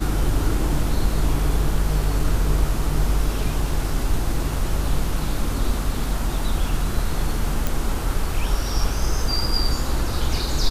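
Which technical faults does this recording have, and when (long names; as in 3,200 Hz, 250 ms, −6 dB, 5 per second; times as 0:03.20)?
0:07.67: click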